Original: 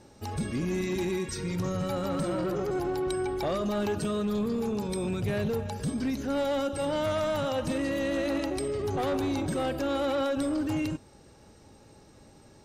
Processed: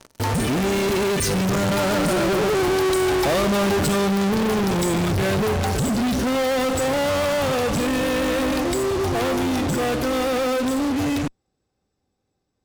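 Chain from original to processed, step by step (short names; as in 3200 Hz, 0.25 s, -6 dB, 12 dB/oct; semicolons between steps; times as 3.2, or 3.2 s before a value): Doppler pass-by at 3.09, 25 m/s, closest 26 m; in parallel at -4.5 dB: fuzz box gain 57 dB, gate -57 dBFS; on the sum: gain -3 dB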